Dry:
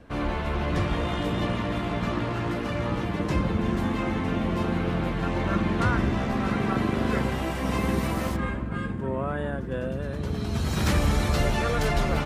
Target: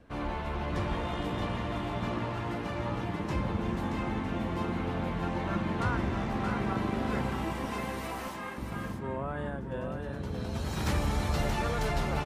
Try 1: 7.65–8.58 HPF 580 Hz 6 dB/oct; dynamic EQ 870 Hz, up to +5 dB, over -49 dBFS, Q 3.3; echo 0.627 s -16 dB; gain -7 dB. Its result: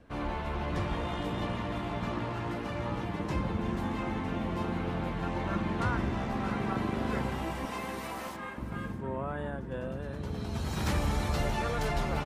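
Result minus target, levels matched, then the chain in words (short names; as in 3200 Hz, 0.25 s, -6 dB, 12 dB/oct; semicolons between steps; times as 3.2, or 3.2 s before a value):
echo-to-direct -9 dB
7.65–8.58 HPF 580 Hz 6 dB/oct; dynamic EQ 870 Hz, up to +5 dB, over -49 dBFS, Q 3.3; echo 0.627 s -7 dB; gain -7 dB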